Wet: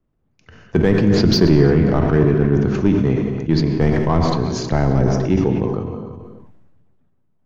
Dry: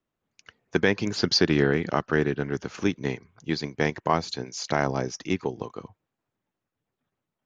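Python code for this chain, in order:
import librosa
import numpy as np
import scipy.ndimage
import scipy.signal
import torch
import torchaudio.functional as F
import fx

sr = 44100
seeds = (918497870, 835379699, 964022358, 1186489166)

p1 = x + 10.0 ** (-19.0 / 20.0) * np.pad(x, (int(326 * sr / 1000.0), 0))[:len(x)]
p2 = 10.0 ** (-20.0 / 20.0) * (np.abs((p1 / 10.0 ** (-20.0 / 20.0) + 3.0) % 4.0 - 2.0) - 1.0)
p3 = p1 + (p2 * 10.0 ** (-5.5 / 20.0))
p4 = fx.tilt_eq(p3, sr, slope=-4.0)
p5 = fx.rev_gated(p4, sr, seeds[0], gate_ms=290, shape='flat', drr_db=6.0)
p6 = fx.sustainer(p5, sr, db_per_s=28.0)
y = p6 * 10.0 ** (-1.0 / 20.0)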